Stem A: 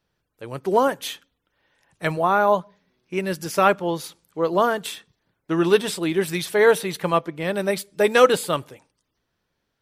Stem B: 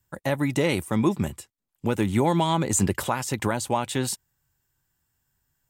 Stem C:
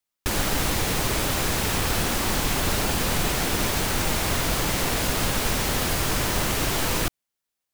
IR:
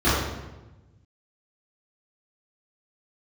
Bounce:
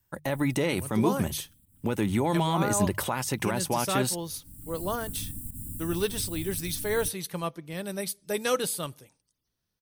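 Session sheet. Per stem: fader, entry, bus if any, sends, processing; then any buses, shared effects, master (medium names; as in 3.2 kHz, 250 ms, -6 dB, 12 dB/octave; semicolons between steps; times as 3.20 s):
-13.0 dB, 0.30 s, no bus, no send, tone controls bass +8 dB, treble +15 dB
-0.5 dB, 0.00 s, bus A, no send, hum notches 50/100/150 Hz
-13.0 dB, 0.00 s, bus A, no send, FFT band-reject 320–7000 Hz; peaking EQ 96 Hz +10 dB 0.21 oct; volume shaper 109 bpm, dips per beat 1, -16 dB, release 102 ms; auto duck -23 dB, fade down 0.65 s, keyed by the second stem
bus A: 0.0 dB, treble shelf 11 kHz +5.5 dB; peak limiter -16 dBFS, peak gain reduction 6 dB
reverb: none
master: band-stop 7.3 kHz, Q 7.2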